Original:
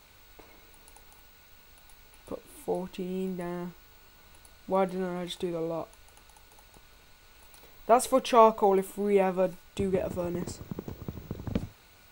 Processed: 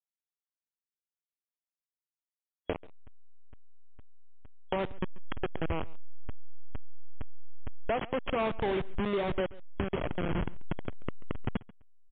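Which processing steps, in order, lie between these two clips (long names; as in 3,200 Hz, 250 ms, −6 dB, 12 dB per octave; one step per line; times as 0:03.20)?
hold until the input has moved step −23 dBFS
gain into a clipping stage and back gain 23 dB
downward compressor 6 to 1, threshold −36 dBFS, peak gain reduction 10.5 dB
single-tap delay 137 ms −21.5 dB
regular buffer underruns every 0.46 s, samples 256, zero, from 0:00.77
level +7.5 dB
MP3 64 kbit/s 8,000 Hz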